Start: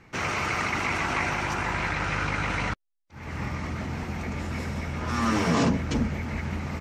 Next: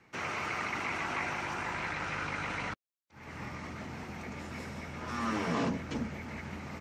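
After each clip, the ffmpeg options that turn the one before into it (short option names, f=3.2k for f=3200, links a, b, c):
-filter_complex "[0:a]highpass=f=180:p=1,acrossover=split=370|850|3700[a][b][c][d];[d]alimiter=level_in=14dB:limit=-24dB:level=0:latency=1:release=25,volume=-14dB[e];[a][b][c][e]amix=inputs=4:normalize=0,volume=-7dB"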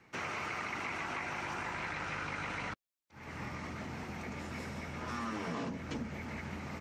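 -af "acompressor=threshold=-35dB:ratio=6"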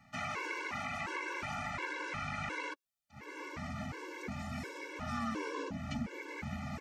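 -af "afftfilt=real='re*gt(sin(2*PI*1.4*pts/sr)*(1-2*mod(floor(b*sr/1024/290),2)),0)':imag='im*gt(sin(2*PI*1.4*pts/sr)*(1-2*mod(floor(b*sr/1024/290),2)),0)':win_size=1024:overlap=0.75,volume=3dB"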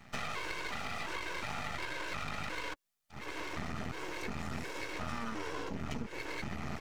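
-af "acompressor=threshold=-42dB:ratio=6,aeval=exprs='max(val(0),0)':c=same,volume=10dB"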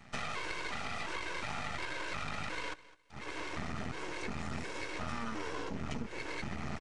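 -af "aecho=1:1:208|416:0.112|0.0247,aresample=22050,aresample=44100"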